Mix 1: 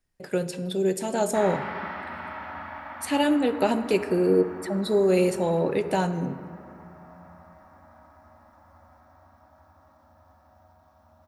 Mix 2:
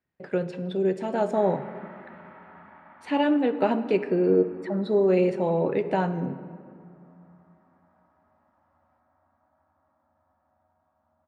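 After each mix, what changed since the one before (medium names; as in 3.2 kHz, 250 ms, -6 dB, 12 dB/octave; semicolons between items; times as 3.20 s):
background -12.0 dB; master: add band-pass 110–2400 Hz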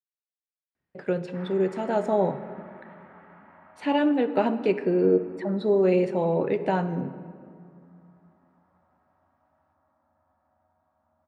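speech: entry +0.75 s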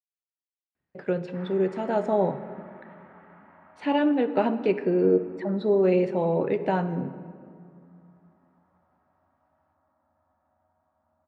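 background: send off; master: add distance through air 72 m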